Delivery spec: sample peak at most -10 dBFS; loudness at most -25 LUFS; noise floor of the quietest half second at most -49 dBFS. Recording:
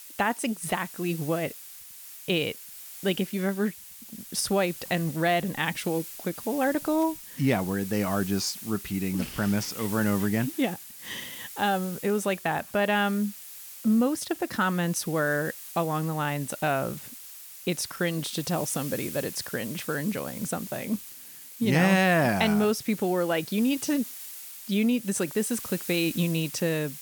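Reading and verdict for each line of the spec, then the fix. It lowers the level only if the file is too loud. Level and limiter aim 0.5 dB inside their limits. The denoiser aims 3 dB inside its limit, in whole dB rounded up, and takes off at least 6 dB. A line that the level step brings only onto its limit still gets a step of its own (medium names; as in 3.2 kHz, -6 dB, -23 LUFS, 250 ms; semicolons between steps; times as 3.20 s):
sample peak -8.5 dBFS: fail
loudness -27.5 LUFS: pass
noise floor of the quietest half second -45 dBFS: fail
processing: noise reduction 7 dB, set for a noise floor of -45 dBFS; peak limiter -10.5 dBFS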